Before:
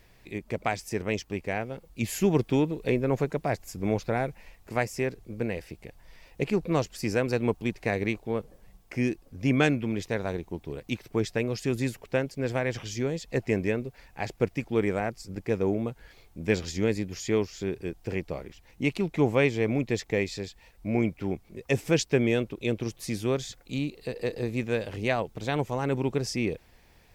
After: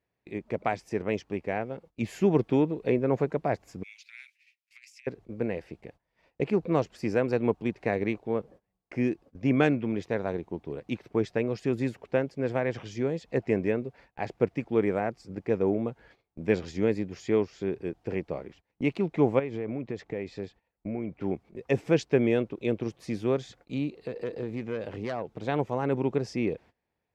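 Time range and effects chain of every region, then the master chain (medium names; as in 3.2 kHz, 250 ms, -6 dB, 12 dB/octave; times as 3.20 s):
3.83–5.07 s: elliptic high-pass 2.3 kHz, stop band 80 dB + compressor with a negative ratio -44 dBFS, ratio -0.5
19.39–21.21 s: treble shelf 3.4 kHz -8 dB + compression 10:1, threshold -28 dBFS
23.96–25.44 s: self-modulated delay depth 0.14 ms + compression 2.5:1, threshold -30 dBFS
whole clip: frequency weighting A; gate -54 dBFS, range -21 dB; tilt EQ -4.5 dB/octave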